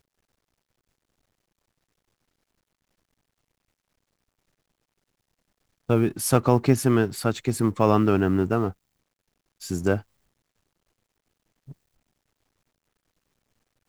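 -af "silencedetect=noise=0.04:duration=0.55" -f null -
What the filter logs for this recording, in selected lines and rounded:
silence_start: 0.00
silence_end: 5.90 | silence_duration: 5.90
silence_start: 8.70
silence_end: 9.71 | silence_duration: 1.01
silence_start: 9.98
silence_end: 13.89 | silence_duration: 3.91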